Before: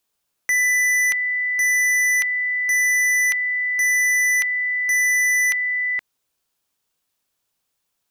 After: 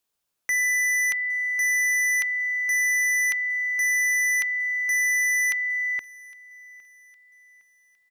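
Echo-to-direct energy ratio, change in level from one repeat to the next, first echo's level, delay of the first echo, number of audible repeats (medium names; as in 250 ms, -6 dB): -23.0 dB, -7.5 dB, -24.0 dB, 810 ms, 2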